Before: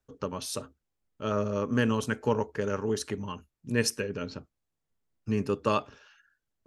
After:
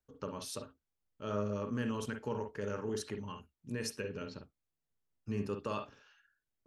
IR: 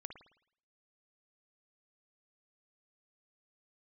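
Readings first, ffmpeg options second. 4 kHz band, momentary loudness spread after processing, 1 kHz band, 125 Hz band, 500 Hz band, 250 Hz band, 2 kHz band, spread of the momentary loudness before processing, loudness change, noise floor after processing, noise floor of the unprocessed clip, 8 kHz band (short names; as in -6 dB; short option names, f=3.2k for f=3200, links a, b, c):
-9.5 dB, 11 LU, -9.5 dB, -8.0 dB, -8.5 dB, -8.5 dB, -10.5 dB, 11 LU, -9.0 dB, under -85 dBFS, -84 dBFS, -9.5 dB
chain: -filter_complex "[0:a]alimiter=limit=-20dB:level=0:latency=1:release=33[a];[1:a]atrim=start_sample=2205,atrim=end_sample=3528,asetrate=48510,aresample=44100[b];[a][b]afir=irnorm=-1:irlink=0,volume=-1dB"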